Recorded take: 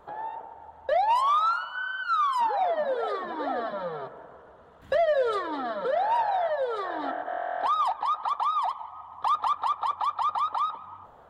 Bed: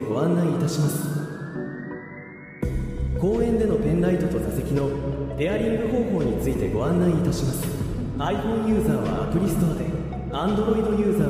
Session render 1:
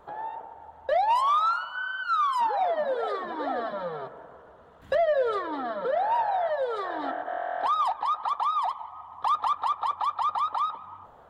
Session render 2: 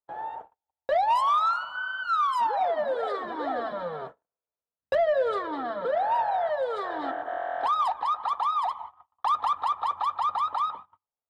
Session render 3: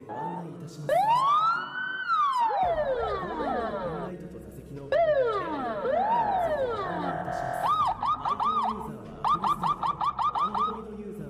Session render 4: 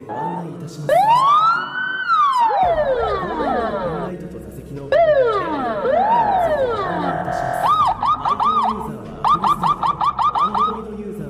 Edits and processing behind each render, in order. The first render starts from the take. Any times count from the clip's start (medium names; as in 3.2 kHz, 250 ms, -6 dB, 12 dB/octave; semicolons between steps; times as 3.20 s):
4.95–6.47 s: treble shelf 4.6 kHz -9.5 dB
gate -39 dBFS, range -48 dB
add bed -17.5 dB
trim +9.5 dB